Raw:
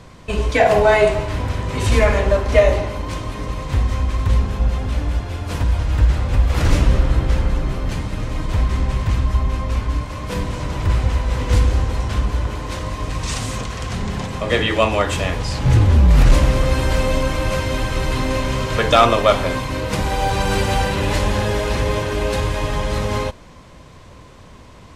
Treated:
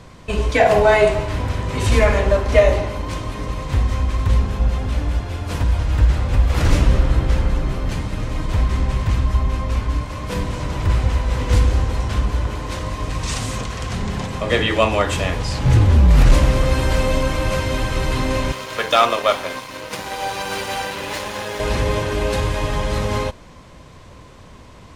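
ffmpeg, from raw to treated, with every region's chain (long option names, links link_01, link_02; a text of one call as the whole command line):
ffmpeg -i in.wav -filter_complex "[0:a]asettb=1/sr,asplit=3[link_01][link_02][link_03];[link_01]atrim=end=18.524[link_04];[link_02]atrim=start=18.52:end=21.6,asetpts=PTS-STARTPTS,afade=type=in:duration=0.004:curve=qsin,afade=type=out:start_time=3.076:duration=0.004:curve=qsin,highpass=frequency=580:poles=1,aeval=exprs='sgn(val(0))*max(abs(val(0))-0.02,0)':channel_layout=same,bandreject=frequency=7800:width=16[link_05];[link_03]atrim=start=21.596[link_06];[link_04][link_05]acrossfade=duration=0.004:curve1=hsin:curve2=qsin[link_07];[link_07][link_06]acrossfade=duration=0.004:curve1=qsin:curve2=hsin" out.wav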